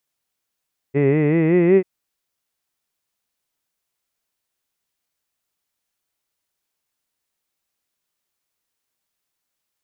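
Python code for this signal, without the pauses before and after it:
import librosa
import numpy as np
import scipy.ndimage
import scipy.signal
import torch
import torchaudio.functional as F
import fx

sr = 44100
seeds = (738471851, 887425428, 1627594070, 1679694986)

y = fx.vowel(sr, seeds[0], length_s=0.89, word='hid', hz=135.0, glide_st=6.0, vibrato_hz=5.3, vibrato_st=0.9)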